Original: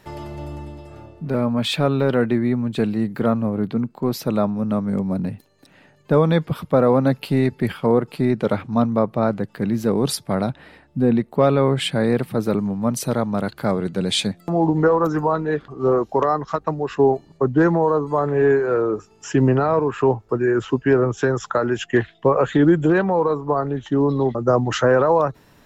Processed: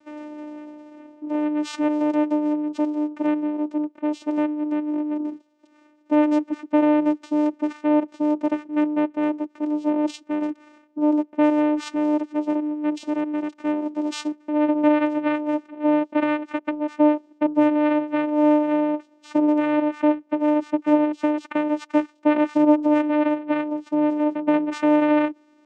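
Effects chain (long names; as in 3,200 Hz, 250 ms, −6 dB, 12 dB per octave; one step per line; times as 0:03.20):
channel vocoder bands 4, saw 300 Hz
level −1.5 dB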